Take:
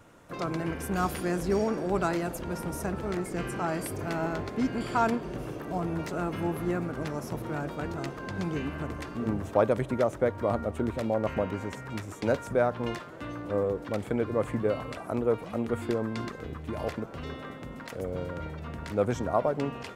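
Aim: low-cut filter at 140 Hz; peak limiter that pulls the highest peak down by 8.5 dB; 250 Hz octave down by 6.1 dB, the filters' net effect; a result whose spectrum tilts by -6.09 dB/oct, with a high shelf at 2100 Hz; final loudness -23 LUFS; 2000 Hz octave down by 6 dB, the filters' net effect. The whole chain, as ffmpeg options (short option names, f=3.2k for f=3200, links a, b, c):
-af "highpass=140,equalizer=f=250:t=o:g=-7.5,equalizer=f=2k:t=o:g=-6.5,highshelf=f=2.1k:g=-3.5,volume=13dB,alimiter=limit=-8.5dB:level=0:latency=1"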